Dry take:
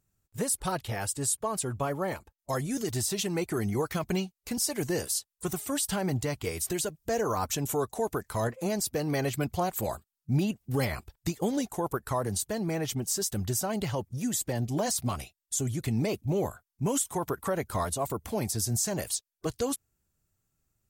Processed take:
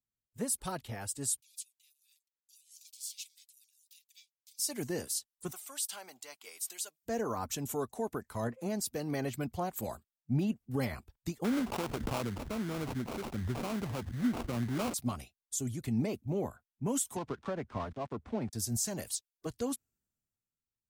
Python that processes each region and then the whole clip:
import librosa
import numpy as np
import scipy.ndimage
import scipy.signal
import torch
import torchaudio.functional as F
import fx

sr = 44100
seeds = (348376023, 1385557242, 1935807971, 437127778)

y = fx.chain(x, sr, fx.cheby1_highpass(hz=3000.0, order=5),
    fx.ring_mod(carrier_hz=520.0), at=(1.4, 4.59))
y = fx.chain(y, sr, fx.highpass(hz=840.0, slope=12),
    fx.peak_eq(hz=1800.0, db=-5.0, octaves=0.23), at=(5.51, 7.03))
y = fx.chain(y, sr, fx.median_filter(points=5),
    fx.sample_hold(seeds[0], rate_hz=1800.0, jitter_pct=20),
    fx.pre_swell(db_per_s=28.0), at=(11.44, 14.94))
y = fx.chain(y, sr, fx.dead_time(dead_ms=0.13),
    fx.air_absorb(metres=120.0),
    fx.band_squash(depth_pct=40), at=(17.16, 18.53))
y = fx.peak_eq(y, sr, hz=240.0, db=7.0, octaves=0.41)
y = fx.band_widen(y, sr, depth_pct=40)
y = F.gain(torch.from_numpy(y), -7.0).numpy()